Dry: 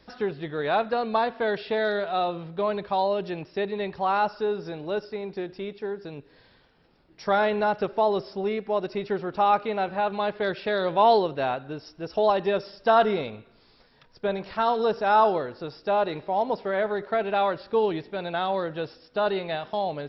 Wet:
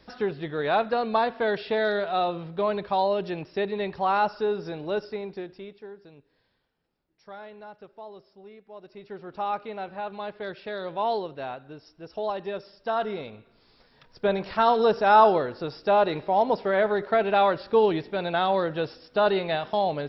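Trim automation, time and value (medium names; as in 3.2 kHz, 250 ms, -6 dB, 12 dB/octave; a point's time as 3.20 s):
5.13 s +0.5 dB
5.90 s -11 dB
7.35 s -20 dB
8.67 s -20 dB
9.35 s -8 dB
12.99 s -8 dB
14.26 s +3 dB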